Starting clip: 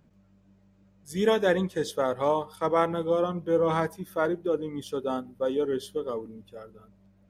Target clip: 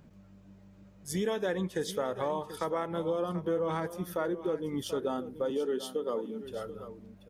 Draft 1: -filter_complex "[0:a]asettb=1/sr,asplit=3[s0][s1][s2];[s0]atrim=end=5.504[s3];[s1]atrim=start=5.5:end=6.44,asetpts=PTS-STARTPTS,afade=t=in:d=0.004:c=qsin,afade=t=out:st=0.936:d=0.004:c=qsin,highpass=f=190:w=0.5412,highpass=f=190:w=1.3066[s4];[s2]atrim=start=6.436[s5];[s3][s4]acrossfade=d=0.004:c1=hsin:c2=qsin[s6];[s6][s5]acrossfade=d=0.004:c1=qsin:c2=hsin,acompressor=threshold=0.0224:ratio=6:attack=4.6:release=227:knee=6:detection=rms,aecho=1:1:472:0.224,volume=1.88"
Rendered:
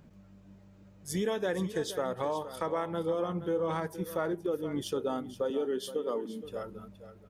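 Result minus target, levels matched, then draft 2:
echo 263 ms early
-filter_complex "[0:a]asettb=1/sr,asplit=3[s0][s1][s2];[s0]atrim=end=5.504[s3];[s1]atrim=start=5.5:end=6.44,asetpts=PTS-STARTPTS,afade=t=in:d=0.004:c=qsin,afade=t=out:st=0.936:d=0.004:c=qsin,highpass=f=190:w=0.5412,highpass=f=190:w=1.3066[s4];[s2]atrim=start=6.436[s5];[s3][s4]acrossfade=d=0.004:c1=hsin:c2=qsin[s6];[s6][s5]acrossfade=d=0.004:c1=qsin:c2=hsin,acompressor=threshold=0.0224:ratio=6:attack=4.6:release=227:knee=6:detection=rms,aecho=1:1:735:0.224,volume=1.88"

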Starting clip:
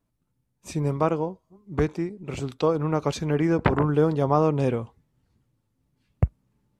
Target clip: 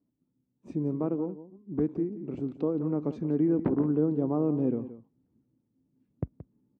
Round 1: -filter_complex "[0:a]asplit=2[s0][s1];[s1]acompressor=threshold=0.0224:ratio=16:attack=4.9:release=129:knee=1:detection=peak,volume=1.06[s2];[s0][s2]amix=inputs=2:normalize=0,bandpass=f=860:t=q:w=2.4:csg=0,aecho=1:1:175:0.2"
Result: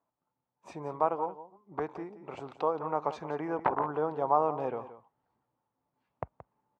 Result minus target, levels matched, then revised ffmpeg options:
1 kHz band +18.0 dB
-filter_complex "[0:a]asplit=2[s0][s1];[s1]acompressor=threshold=0.0224:ratio=16:attack=4.9:release=129:knee=1:detection=peak,volume=1.06[s2];[s0][s2]amix=inputs=2:normalize=0,bandpass=f=270:t=q:w=2.4:csg=0,aecho=1:1:175:0.2"

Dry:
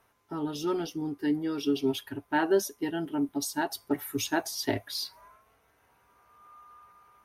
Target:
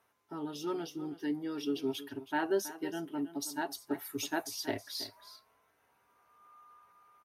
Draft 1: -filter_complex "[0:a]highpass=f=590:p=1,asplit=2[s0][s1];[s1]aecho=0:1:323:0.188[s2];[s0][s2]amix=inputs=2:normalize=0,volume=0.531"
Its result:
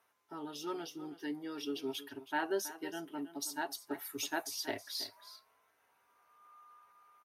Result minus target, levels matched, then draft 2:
125 Hz band -6.0 dB
-filter_complex "[0:a]highpass=f=170:p=1,asplit=2[s0][s1];[s1]aecho=0:1:323:0.188[s2];[s0][s2]amix=inputs=2:normalize=0,volume=0.531"

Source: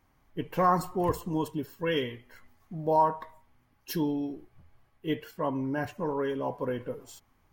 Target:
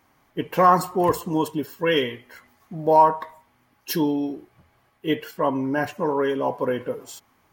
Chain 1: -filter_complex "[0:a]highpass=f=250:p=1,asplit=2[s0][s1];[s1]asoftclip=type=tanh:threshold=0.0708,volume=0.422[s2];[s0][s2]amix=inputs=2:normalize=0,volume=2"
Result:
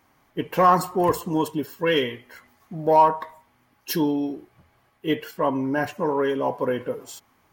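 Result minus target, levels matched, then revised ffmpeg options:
saturation: distortion +11 dB
-filter_complex "[0:a]highpass=f=250:p=1,asplit=2[s0][s1];[s1]asoftclip=type=tanh:threshold=0.2,volume=0.422[s2];[s0][s2]amix=inputs=2:normalize=0,volume=2"

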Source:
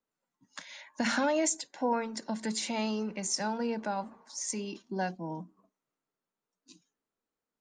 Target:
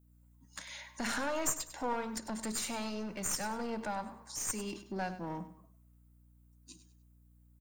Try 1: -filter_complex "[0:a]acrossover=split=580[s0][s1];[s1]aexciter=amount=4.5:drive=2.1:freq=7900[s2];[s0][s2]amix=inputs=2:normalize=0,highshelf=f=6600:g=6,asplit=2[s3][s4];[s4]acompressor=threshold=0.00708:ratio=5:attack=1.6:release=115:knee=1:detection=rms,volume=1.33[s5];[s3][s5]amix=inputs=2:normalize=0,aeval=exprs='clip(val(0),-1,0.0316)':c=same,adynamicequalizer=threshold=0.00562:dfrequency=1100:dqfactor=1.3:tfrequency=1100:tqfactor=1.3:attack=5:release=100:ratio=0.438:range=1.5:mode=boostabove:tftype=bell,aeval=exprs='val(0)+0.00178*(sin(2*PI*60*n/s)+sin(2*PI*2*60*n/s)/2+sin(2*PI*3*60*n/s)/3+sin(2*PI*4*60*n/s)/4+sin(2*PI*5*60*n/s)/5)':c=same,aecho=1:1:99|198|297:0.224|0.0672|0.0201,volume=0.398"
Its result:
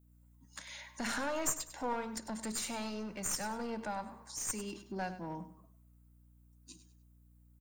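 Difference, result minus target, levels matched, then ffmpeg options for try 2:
compression: peak gain reduction +7 dB
-filter_complex "[0:a]acrossover=split=580[s0][s1];[s1]aexciter=amount=4.5:drive=2.1:freq=7900[s2];[s0][s2]amix=inputs=2:normalize=0,highshelf=f=6600:g=6,asplit=2[s3][s4];[s4]acompressor=threshold=0.0188:ratio=5:attack=1.6:release=115:knee=1:detection=rms,volume=1.33[s5];[s3][s5]amix=inputs=2:normalize=0,aeval=exprs='clip(val(0),-1,0.0316)':c=same,adynamicequalizer=threshold=0.00562:dfrequency=1100:dqfactor=1.3:tfrequency=1100:tqfactor=1.3:attack=5:release=100:ratio=0.438:range=1.5:mode=boostabove:tftype=bell,aeval=exprs='val(0)+0.00178*(sin(2*PI*60*n/s)+sin(2*PI*2*60*n/s)/2+sin(2*PI*3*60*n/s)/3+sin(2*PI*4*60*n/s)/4+sin(2*PI*5*60*n/s)/5)':c=same,aecho=1:1:99|198|297:0.224|0.0672|0.0201,volume=0.398"

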